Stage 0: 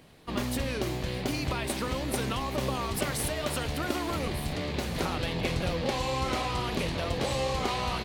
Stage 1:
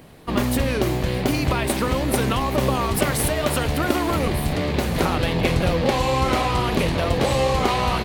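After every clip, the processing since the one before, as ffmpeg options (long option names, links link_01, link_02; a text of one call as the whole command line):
ffmpeg -i in.wav -filter_complex "[0:a]highshelf=frequency=7400:gain=8.5,asplit=2[link_01][link_02];[link_02]adynamicsmooth=sensitivity=2:basefreq=2700,volume=1dB[link_03];[link_01][link_03]amix=inputs=2:normalize=0,volume=3.5dB" out.wav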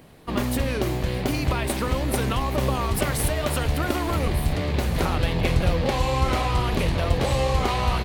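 ffmpeg -i in.wav -af "asubboost=boost=2:cutoff=130,volume=-3.5dB" out.wav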